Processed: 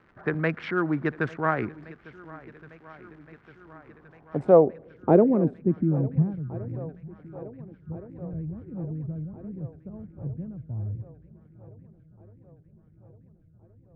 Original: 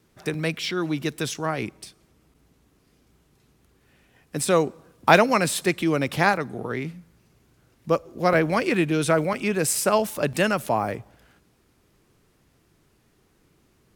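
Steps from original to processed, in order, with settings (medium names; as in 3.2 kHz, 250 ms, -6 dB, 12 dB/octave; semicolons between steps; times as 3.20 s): local Wiener filter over 15 samples; crackle 340 per s -44 dBFS; low-pass sweep 1.6 kHz -> 100 Hz, 3.61–6.69 s; shuffle delay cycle 1419 ms, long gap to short 1.5:1, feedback 57%, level -20 dB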